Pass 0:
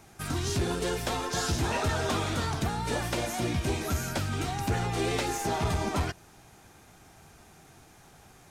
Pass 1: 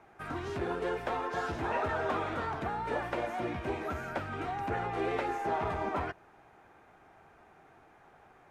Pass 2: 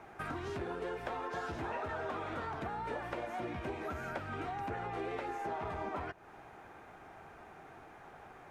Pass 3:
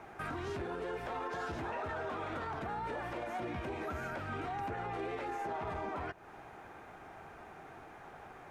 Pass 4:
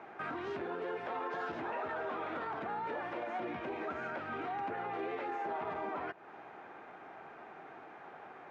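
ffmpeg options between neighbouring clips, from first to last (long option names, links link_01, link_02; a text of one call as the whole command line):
ffmpeg -i in.wav -filter_complex "[0:a]acrossover=split=330 2300:gain=0.251 1 0.0631[link_01][link_02][link_03];[link_01][link_02][link_03]amix=inputs=3:normalize=0" out.wav
ffmpeg -i in.wav -af "acompressor=threshold=-44dB:ratio=4,volume=5.5dB" out.wav
ffmpeg -i in.wav -af "alimiter=level_in=9dB:limit=-24dB:level=0:latency=1:release=20,volume=-9dB,volume=2dB" out.wav
ffmpeg -i in.wav -af "highpass=220,lowpass=3300,volume=1dB" out.wav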